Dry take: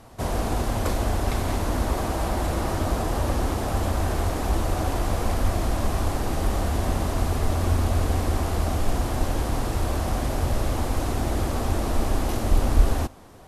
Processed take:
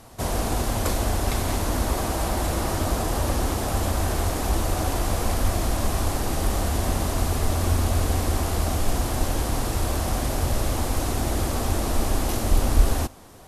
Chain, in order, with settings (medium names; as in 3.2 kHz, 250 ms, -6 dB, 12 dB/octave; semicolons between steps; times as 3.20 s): treble shelf 3.9 kHz +7.5 dB